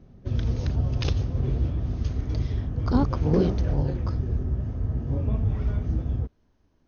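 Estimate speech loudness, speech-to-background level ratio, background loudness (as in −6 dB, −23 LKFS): −27.5 LKFS, 0.0 dB, −27.5 LKFS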